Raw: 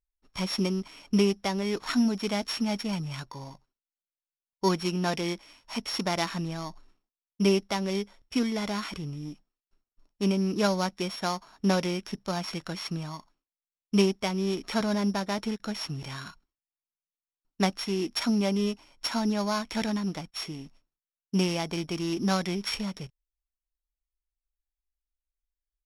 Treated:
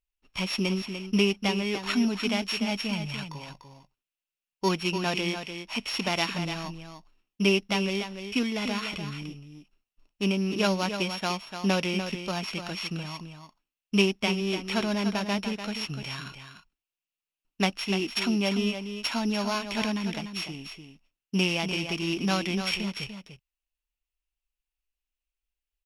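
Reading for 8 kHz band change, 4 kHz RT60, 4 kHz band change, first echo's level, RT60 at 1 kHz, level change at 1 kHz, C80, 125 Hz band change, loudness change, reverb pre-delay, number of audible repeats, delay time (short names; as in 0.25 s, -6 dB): 0.0 dB, none, +4.0 dB, -8.5 dB, none, 0.0 dB, none, -0.5 dB, +1.0 dB, none, 1, 0.295 s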